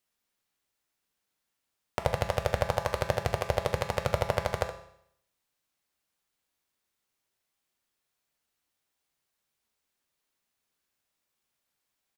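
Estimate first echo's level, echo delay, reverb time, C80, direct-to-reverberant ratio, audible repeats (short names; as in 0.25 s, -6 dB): -11.5 dB, 70 ms, 0.70 s, 13.0 dB, 5.0 dB, 1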